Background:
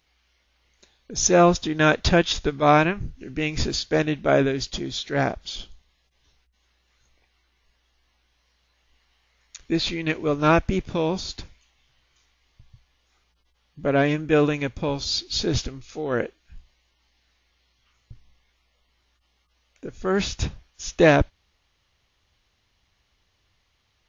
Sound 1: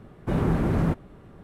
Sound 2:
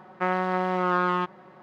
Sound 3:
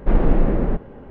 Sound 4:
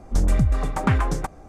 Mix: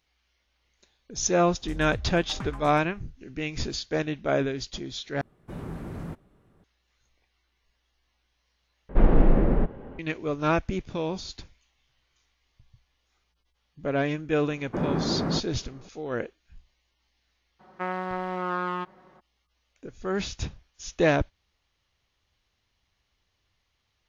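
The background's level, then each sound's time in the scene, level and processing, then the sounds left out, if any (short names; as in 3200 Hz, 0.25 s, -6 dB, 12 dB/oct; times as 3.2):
background -6 dB
1.53 add 4 -16.5 dB
5.21 replace with 1 -13.5 dB + high shelf 3800 Hz +6.5 dB
8.89 replace with 3 -2 dB
14.46 add 1 -0.5 dB + three-band isolator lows -16 dB, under 160 Hz, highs -16 dB, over 2300 Hz
17.59 add 2 -5.5 dB, fades 0.02 s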